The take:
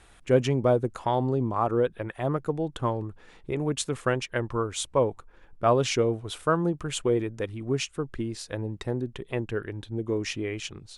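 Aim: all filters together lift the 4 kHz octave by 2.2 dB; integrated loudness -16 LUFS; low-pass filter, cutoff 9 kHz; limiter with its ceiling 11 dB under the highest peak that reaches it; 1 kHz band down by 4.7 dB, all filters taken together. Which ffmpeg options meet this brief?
-af "lowpass=9000,equalizer=f=1000:t=o:g=-6.5,equalizer=f=4000:t=o:g=3.5,volume=6.31,alimiter=limit=0.562:level=0:latency=1"

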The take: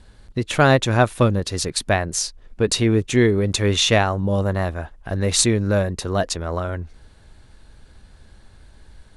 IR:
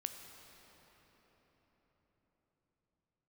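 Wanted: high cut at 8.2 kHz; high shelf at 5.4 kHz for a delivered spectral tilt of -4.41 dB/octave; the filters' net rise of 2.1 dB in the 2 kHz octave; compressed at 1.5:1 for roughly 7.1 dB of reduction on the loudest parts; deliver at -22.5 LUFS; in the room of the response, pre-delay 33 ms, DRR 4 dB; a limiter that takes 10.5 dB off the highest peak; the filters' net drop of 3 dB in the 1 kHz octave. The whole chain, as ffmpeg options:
-filter_complex "[0:a]lowpass=8200,equalizer=f=1000:t=o:g=-6,equalizer=f=2000:t=o:g=4,highshelf=f=5400:g=6.5,acompressor=threshold=0.0282:ratio=1.5,alimiter=limit=0.112:level=0:latency=1,asplit=2[s0][s1];[1:a]atrim=start_sample=2205,adelay=33[s2];[s1][s2]afir=irnorm=-1:irlink=0,volume=0.75[s3];[s0][s3]amix=inputs=2:normalize=0,volume=1.88"

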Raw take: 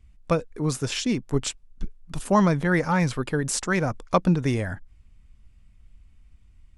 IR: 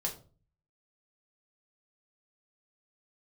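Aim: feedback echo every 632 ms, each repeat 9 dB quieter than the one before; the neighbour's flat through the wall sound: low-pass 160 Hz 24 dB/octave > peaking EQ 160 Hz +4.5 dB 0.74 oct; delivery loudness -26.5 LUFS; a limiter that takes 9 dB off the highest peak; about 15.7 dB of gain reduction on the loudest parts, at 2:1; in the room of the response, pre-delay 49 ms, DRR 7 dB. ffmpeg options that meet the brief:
-filter_complex "[0:a]acompressor=threshold=0.00562:ratio=2,alimiter=level_in=2.11:limit=0.0631:level=0:latency=1,volume=0.473,aecho=1:1:632|1264|1896|2528:0.355|0.124|0.0435|0.0152,asplit=2[s0][s1];[1:a]atrim=start_sample=2205,adelay=49[s2];[s1][s2]afir=irnorm=-1:irlink=0,volume=0.355[s3];[s0][s3]amix=inputs=2:normalize=0,lowpass=f=160:w=0.5412,lowpass=f=160:w=1.3066,equalizer=f=160:t=o:w=0.74:g=4.5,volume=6.68"

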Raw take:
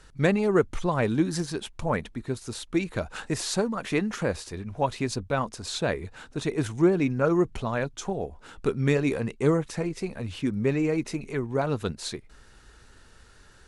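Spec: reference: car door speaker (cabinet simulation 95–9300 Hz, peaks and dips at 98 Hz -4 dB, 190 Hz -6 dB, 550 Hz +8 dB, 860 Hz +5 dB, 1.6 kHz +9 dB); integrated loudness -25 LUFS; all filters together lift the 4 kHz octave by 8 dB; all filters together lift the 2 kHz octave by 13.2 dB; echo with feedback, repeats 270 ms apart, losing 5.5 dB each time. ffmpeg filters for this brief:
-af "highpass=95,equalizer=f=98:t=q:w=4:g=-4,equalizer=f=190:t=q:w=4:g=-6,equalizer=f=550:t=q:w=4:g=8,equalizer=f=860:t=q:w=4:g=5,equalizer=f=1600:t=q:w=4:g=9,lowpass=f=9300:w=0.5412,lowpass=f=9300:w=1.3066,equalizer=f=2000:t=o:g=8.5,equalizer=f=4000:t=o:g=7,aecho=1:1:270|540|810|1080|1350|1620|1890:0.531|0.281|0.149|0.079|0.0419|0.0222|0.0118,volume=0.708"

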